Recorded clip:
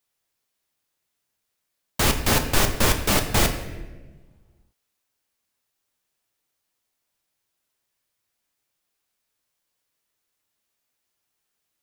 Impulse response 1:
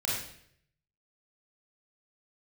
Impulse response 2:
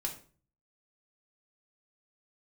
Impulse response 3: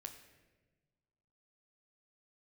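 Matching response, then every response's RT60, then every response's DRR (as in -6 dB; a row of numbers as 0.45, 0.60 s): 3; 0.65, 0.45, 1.3 s; -5.0, 0.5, 5.0 dB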